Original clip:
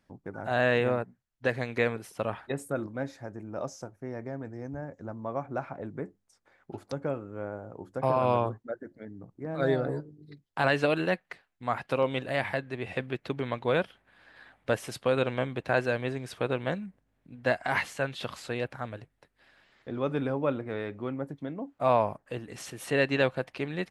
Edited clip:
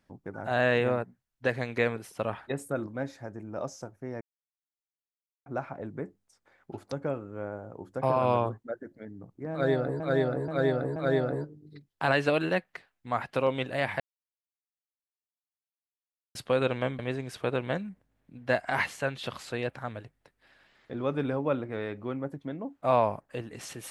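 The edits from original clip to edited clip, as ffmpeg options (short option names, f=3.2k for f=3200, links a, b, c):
-filter_complex "[0:a]asplit=9[a][b][c][d][e][f][g][h][i];[a]atrim=end=4.21,asetpts=PTS-STARTPTS,afade=t=out:st=4.206:d=0.004:c=hsin[j];[b]atrim=start=4.21:end=5.46,asetpts=PTS-STARTPTS,volume=0[k];[c]atrim=start=5.46:end=10.002,asetpts=PTS-STARTPTS,afade=t=in:d=0.004:c=hsin[l];[d]atrim=start=9.518:end=10.002[m];[e]atrim=start=9.518:end=10.002[n];[f]atrim=start=9.518:end=12.56,asetpts=PTS-STARTPTS,afade=t=out:st=3.038:d=0.004:c=hsin[o];[g]atrim=start=12.56:end=14.91,asetpts=PTS-STARTPTS,volume=0[p];[h]atrim=start=14.91:end=15.552,asetpts=PTS-STARTPTS,afade=t=in:d=0.004:c=hsin[q];[i]atrim=start=15.958[r];[j][k][l]concat=n=3:v=0:a=1[s];[s][m]acrossfade=d=0.004:c1=hsin:c2=hsin[t];[t][n]acrossfade=d=0.004:c1=hsin:c2=hsin[u];[o][p][q]concat=n=3:v=0:a=1[v];[u][v]acrossfade=d=0.004:c1=hsin:c2=hsin[w];[w][r]acrossfade=d=0.004:c1=hsin:c2=hsin"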